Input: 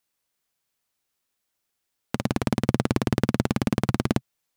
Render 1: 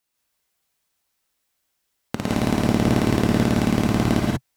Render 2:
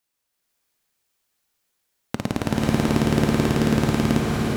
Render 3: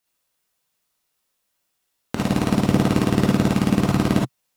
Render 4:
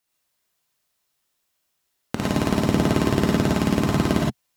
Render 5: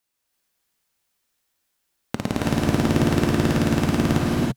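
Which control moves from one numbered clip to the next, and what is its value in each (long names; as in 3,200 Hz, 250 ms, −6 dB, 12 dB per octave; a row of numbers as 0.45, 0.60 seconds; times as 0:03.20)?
reverb whose tail is shaped and stops, gate: 210, 540, 90, 140, 360 milliseconds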